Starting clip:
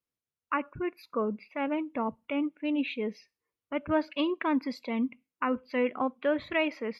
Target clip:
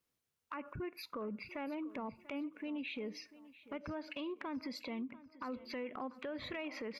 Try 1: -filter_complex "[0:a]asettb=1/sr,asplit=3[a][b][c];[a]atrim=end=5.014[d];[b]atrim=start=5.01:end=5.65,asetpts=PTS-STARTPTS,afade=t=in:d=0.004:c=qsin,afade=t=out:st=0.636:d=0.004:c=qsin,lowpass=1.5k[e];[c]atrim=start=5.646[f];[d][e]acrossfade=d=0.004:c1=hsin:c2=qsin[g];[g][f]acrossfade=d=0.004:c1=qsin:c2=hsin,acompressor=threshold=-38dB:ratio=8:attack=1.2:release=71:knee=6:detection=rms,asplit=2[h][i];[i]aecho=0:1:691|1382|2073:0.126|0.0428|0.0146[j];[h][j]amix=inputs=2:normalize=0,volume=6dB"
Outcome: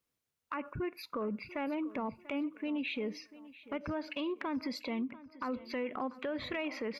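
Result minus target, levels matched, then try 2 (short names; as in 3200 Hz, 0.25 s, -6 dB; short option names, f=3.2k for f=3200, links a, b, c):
compressor: peak gain reduction -5.5 dB
-filter_complex "[0:a]asettb=1/sr,asplit=3[a][b][c];[a]atrim=end=5.014[d];[b]atrim=start=5.01:end=5.65,asetpts=PTS-STARTPTS,afade=t=in:d=0.004:c=qsin,afade=t=out:st=0.636:d=0.004:c=qsin,lowpass=1.5k[e];[c]atrim=start=5.646[f];[d][e]acrossfade=d=0.004:c1=hsin:c2=qsin[g];[g][f]acrossfade=d=0.004:c1=qsin:c2=hsin,acompressor=threshold=-44.5dB:ratio=8:attack=1.2:release=71:knee=6:detection=rms,asplit=2[h][i];[i]aecho=0:1:691|1382|2073:0.126|0.0428|0.0146[j];[h][j]amix=inputs=2:normalize=0,volume=6dB"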